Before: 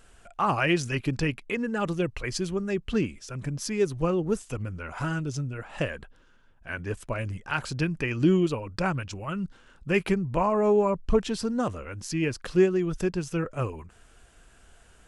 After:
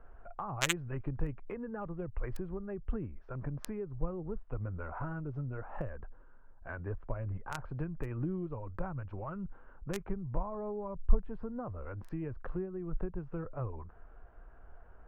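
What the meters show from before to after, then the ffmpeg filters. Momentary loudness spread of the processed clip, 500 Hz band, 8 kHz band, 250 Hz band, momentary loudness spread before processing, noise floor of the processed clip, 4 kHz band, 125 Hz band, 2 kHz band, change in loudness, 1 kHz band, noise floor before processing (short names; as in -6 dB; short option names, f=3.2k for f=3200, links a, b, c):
13 LU, -14.5 dB, -7.0 dB, -13.0 dB, 12 LU, -54 dBFS, -8.5 dB, -8.0 dB, -12.5 dB, -11.5 dB, -12.5 dB, -57 dBFS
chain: -filter_complex "[0:a]equalizer=f=180:w=0.34:g=-13,acrossover=split=140|1200[a][b][c];[b]acompressor=threshold=-47dB:ratio=6[d];[c]acrusher=bits=2:mix=0:aa=0.5[e];[a][d][e]amix=inputs=3:normalize=0,volume=7.5dB"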